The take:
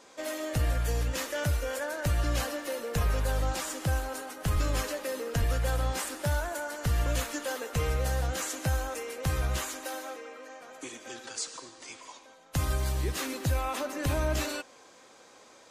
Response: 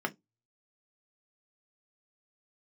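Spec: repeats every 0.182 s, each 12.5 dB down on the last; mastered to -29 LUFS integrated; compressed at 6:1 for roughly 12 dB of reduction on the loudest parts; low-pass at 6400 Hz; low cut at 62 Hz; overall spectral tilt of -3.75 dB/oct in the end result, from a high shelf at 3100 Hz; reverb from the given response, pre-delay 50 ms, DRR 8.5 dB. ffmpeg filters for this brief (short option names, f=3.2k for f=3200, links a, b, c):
-filter_complex "[0:a]highpass=62,lowpass=6.4k,highshelf=f=3.1k:g=4,acompressor=threshold=-38dB:ratio=6,aecho=1:1:182|364|546:0.237|0.0569|0.0137,asplit=2[a][b];[1:a]atrim=start_sample=2205,adelay=50[c];[b][c]afir=irnorm=-1:irlink=0,volume=-15dB[d];[a][d]amix=inputs=2:normalize=0,volume=12dB"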